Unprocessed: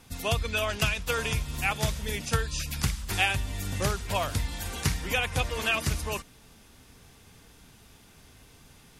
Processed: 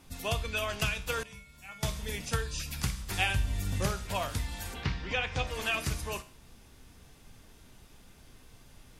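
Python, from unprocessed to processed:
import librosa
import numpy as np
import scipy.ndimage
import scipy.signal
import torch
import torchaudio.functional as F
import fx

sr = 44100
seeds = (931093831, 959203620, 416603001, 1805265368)

y = fx.low_shelf(x, sr, hz=130.0, db=9.0, at=(3.18, 3.86))
y = fx.lowpass(y, sr, hz=fx.line((4.73, 3700.0), (5.46, 6800.0)), slope=24, at=(4.73, 5.46), fade=0.02)
y = fx.comb_fb(y, sr, f0_hz=63.0, decay_s=0.44, harmonics='all', damping=0.0, mix_pct=60)
y = fx.dmg_noise_colour(y, sr, seeds[0], colour='brown', level_db=-56.0)
y = fx.comb_fb(y, sr, f0_hz=200.0, decay_s=0.41, harmonics='odd', damping=0.0, mix_pct=90, at=(1.23, 1.83))
y = F.gain(torch.from_numpy(y), 1.0).numpy()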